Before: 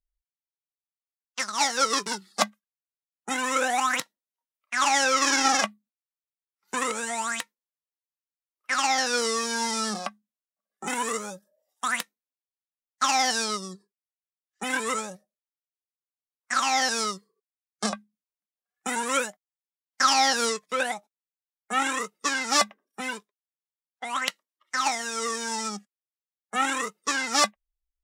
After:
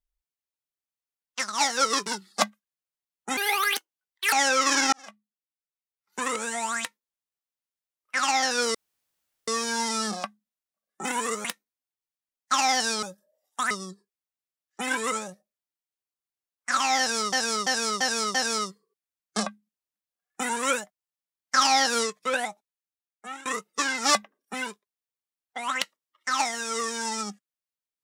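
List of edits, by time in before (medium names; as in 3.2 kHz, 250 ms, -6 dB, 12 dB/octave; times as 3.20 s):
3.37–4.88 s: speed 158%
5.48–7.02 s: fade in
9.30 s: insert room tone 0.73 s
11.27–11.95 s: move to 13.53 s
16.81–17.15 s: loop, 5 plays
20.96–21.92 s: fade out, to -21.5 dB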